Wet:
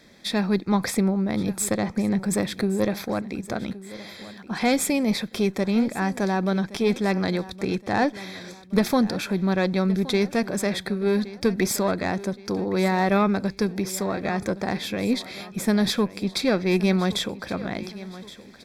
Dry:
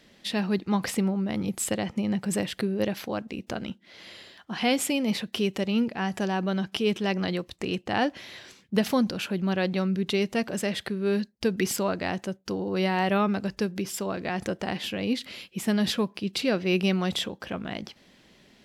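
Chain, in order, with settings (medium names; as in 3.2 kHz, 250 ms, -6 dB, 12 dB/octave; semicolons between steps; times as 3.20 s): single-diode clipper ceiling -18.5 dBFS; Butterworth band-stop 2.9 kHz, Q 4.4; feedback delay 1119 ms, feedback 43%, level -17 dB; trim +4.5 dB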